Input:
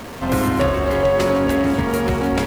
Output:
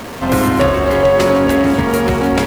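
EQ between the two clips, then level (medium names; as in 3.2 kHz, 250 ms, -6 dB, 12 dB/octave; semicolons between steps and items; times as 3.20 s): bass shelf 100 Hz -4.5 dB; +5.5 dB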